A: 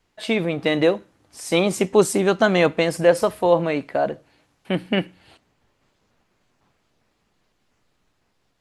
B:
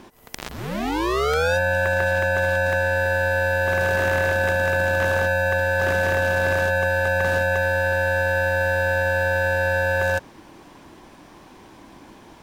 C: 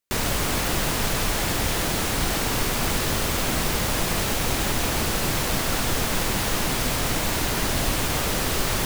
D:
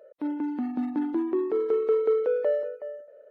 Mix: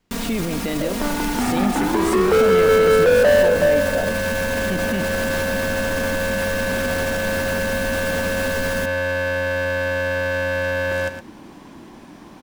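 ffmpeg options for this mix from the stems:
-filter_complex "[0:a]acompressor=threshold=0.126:ratio=6,volume=0.841[s0];[1:a]asoftclip=type=tanh:threshold=0.0841,adelay=900,volume=1.12,asplit=2[s1][s2];[s2]volume=0.355[s3];[2:a]aecho=1:1:4.3:0.94,volume=0.447[s4];[3:a]asplit=2[s5][s6];[s6]highpass=f=720:p=1,volume=56.2,asoftclip=type=tanh:threshold=0.398[s7];[s5][s7]amix=inputs=2:normalize=0,lowpass=f=1100:p=1,volume=0.501,equalizer=f=290:w=2.9:g=-14,adelay=800,volume=1.33[s8];[s0][s1][s4]amix=inputs=3:normalize=0,equalizer=f=220:w=1.5:g=9,alimiter=limit=0.178:level=0:latency=1:release=27,volume=1[s9];[s3]aecho=0:1:113:1[s10];[s8][s9][s10]amix=inputs=3:normalize=0"

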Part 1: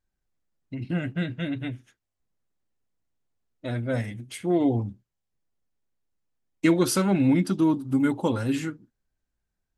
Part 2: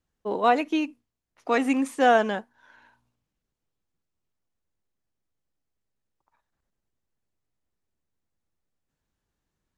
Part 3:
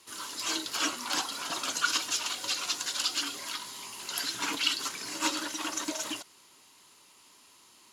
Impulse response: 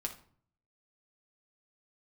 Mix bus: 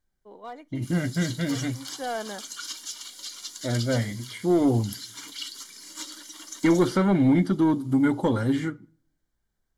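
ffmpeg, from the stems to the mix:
-filter_complex "[0:a]acrossover=split=3500[s0][s1];[s1]acompressor=threshold=0.00282:ratio=4:attack=1:release=60[s2];[s0][s2]amix=inputs=2:normalize=0,asoftclip=type=tanh:threshold=0.178,volume=1.19,asplit=2[s3][s4];[s4]volume=0.211[s5];[1:a]asoftclip=type=hard:threshold=0.224,volume=0.398,afade=t=in:st=1.77:d=0.64:silence=0.281838[s6];[2:a]highpass=f=180:w=0.5412,highpass=f=180:w=1.3066,equalizer=f=720:w=0.41:g=-14,adelay=750,volume=0.668[s7];[3:a]atrim=start_sample=2205[s8];[s5][s8]afir=irnorm=-1:irlink=0[s9];[s3][s6][s7][s9]amix=inputs=4:normalize=0,asuperstop=centerf=2600:order=8:qfactor=6.3"

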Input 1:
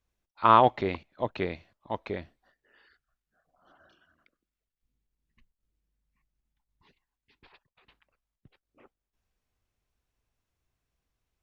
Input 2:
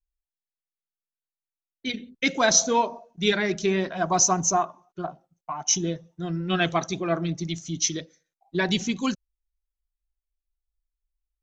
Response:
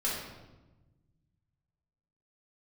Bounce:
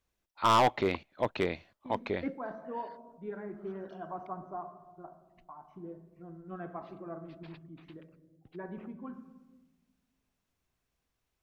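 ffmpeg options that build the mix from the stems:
-filter_complex "[0:a]volume=1.19,asplit=2[s0][s1];[1:a]lowpass=f=1300:w=0.5412,lowpass=f=1300:w=1.3066,volume=0.422,asplit=2[s2][s3];[s3]volume=0.0841[s4];[s1]apad=whole_len=503704[s5];[s2][s5]sidechaingate=range=0.316:threshold=0.00316:ratio=16:detection=peak[s6];[2:a]atrim=start_sample=2205[s7];[s4][s7]afir=irnorm=-1:irlink=0[s8];[s0][s6][s8]amix=inputs=3:normalize=0,lowshelf=f=130:g=-6,asoftclip=type=hard:threshold=0.112"

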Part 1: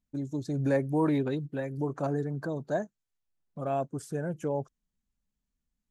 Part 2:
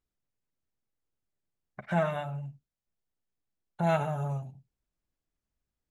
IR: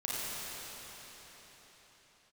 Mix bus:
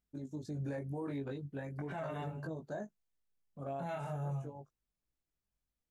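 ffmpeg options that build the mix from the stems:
-filter_complex "[0:a]tremolo=f=51:d=0.261,volume=0.668,afade=t=out:st=3.46:d=0.64:silence=0.334965[s0];[1:a]volume=0.794[s1];[s0][s1]amix=inputs=2:normalize=0,flanger=delay=19:depth=2.7:speed=0.39,alimiter=level_in=2.51:limit=0.0631:level=0:latency=1:release=82,volume=0.398"

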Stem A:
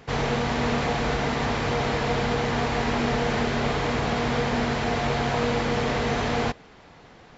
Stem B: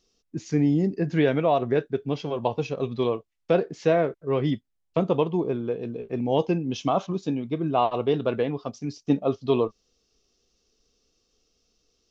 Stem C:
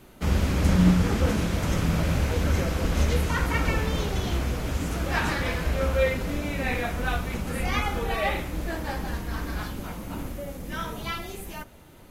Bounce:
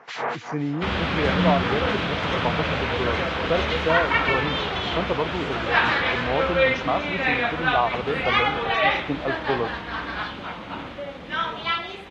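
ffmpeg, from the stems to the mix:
-filter_complex "[0:a]highpass=f=510:p=1,acrossover=split=2000[s0][s1];[s0]aeval=exprs='val(0)*(1-1/2+1/2*cos(2*PI*3.8*n/s))':c=same[s2];[s1]aeval=exprs='val(0)*(1-1/2-1/2*cos(2*PI*3.8*n/s))':c=same[s3];[s2][s3]amix=inputs=2:normalize=0,volume=0.596[s4];[1:a]equalizer=f=110:t=o:w=0.78:g=9.5,volume=0.299,asplit=2[s5][s6];[2:a]lowpass=f=3500:t=q:w=2.7,adelay=600,volume=0.562[s7];[s6]apad=whole_len=325278[s8];[s4][s8]sidechaincompress=threshold=0.01:ratio=8:attack=5.1:release=843[s9];[s9][s5][s7]amix=inputs=3:normalize=0,highpass=80,equalizer=f=1200:w=0.4:g=12.5"

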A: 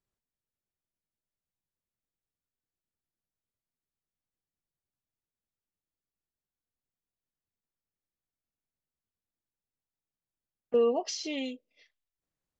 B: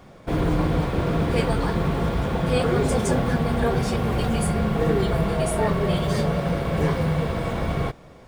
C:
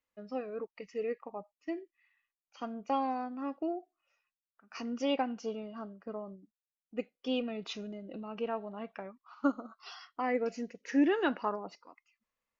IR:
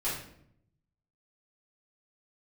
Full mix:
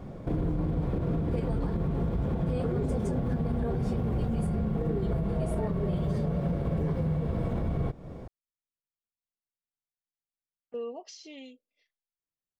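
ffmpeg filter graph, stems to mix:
-filter_complex "[0:a]volume=0.266[s0];[1:a]tiltshelf=f=730:g=8.5,acompressor=threshold=0.0398:ratio=3,volume=1[s1];[s0][s1]amix=inputs=2:normalize=0,alimiter=limit=0.0891:level=0:latency=1:release=41"

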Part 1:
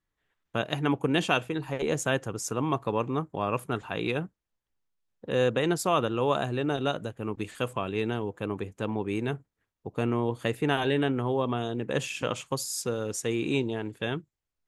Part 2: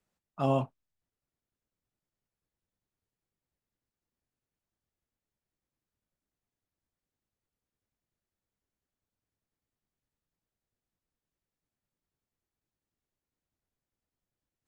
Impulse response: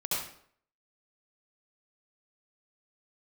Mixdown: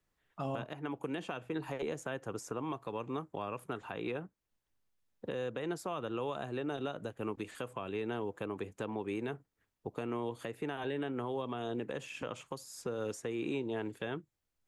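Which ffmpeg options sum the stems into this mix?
-filter_complex "[0:a]acrossover=split=240|2100[s0][s1][s2];[s0]acompressor=threshold=0.00562:ratio=4[s3];[s1]acompressor=threshold=0.0282:ratio=4[s4];[s2]acompressor=threshold=0.00398:ratio=4[s5];[s3][s4][s5]amix=inputs=3:normalize=0,volume=1[s6];[1:a]alimiter=limit=0.0708:level=0:latency=1,volume=0.75[s7];[s6][s7]amix=inputs=2:normalize=0,alimiter=level_in=1.41:limit=0.0631:level=0:latency=1:release=336,volume=0.708"

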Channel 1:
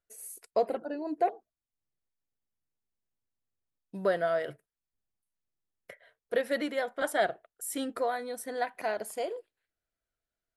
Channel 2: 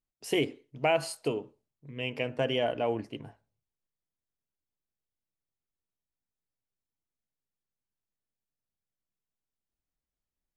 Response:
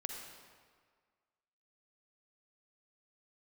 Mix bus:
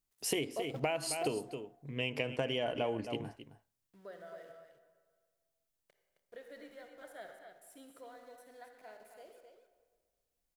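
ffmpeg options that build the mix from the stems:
-filter_complex "[0:a]aeval=exprs='val(0)*gte(abs(val(0)),0.00794)':c=same,volume=0.224,asplit=3[s0][s1][s2];[s1]volume=0.335[s3];[s2]volume=0.141[s4];[1:a]highshelf=f=4600:g=7,volume=1.19,asplit=3[s5][s6][s7];[s6]volume=0.2[s8];[s7]apad=whole_len=465900[s9];[s0][s9]sidechaingate=range=0.0891:threshold=0.00251:ratio=16:detection=peak[s10];[2:a]atrim=start_sample=2205[s11];[s3][s11]afir=irnorm=-1:irlink=0[s12];[s4][s8]amix=inputs=2:normalize=0,aecho=0:1:266:1[s13];[s10][s5][s12][s13]amix=inputs=4:normalize=0,acompressor=threshold=0.0316:ratio=10"

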